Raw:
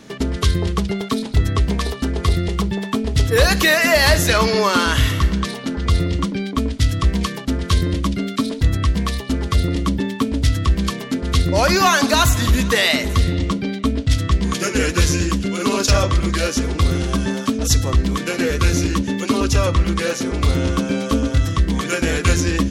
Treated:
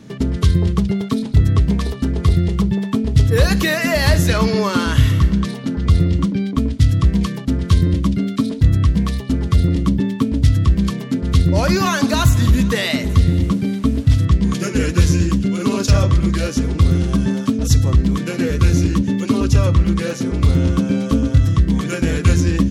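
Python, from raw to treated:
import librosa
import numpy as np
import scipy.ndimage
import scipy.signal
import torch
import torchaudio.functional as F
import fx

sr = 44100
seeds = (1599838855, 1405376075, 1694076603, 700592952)

y = fx.delta_mod(x, sr, bps=64000, step_db=-32.5, at=(13.29, 14.25))
y = fx.peak_eq(y, sr, hz=130.0, db=13.0, octaves=2.2)
y = fx.notch(y, sr, hz=740.0, q=21.0)
y = y * 10.0 ** (-5.0 / 20.0)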